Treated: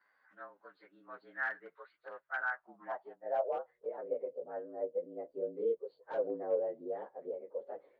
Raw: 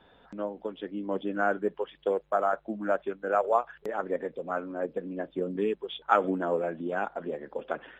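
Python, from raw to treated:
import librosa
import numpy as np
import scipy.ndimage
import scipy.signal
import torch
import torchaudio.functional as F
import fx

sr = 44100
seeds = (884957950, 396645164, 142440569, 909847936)

y = fx.partial_stretch(x, sr, pct=110)
y = 10.0 ** (-21.0 / 20.0) * (np.abs((y / 10.0 ** (-21.0 / 20.0) + 3.0) % 4.0 - 2.0) - 1.0)
y = fx.filter_sweep_bandpass(y, sr, from_hz=1500.0, to_hz=500.0, start_s=2.44, end_s=3.6, q=4.8)
y = y * 10.0 ** (1.5 / 20.0)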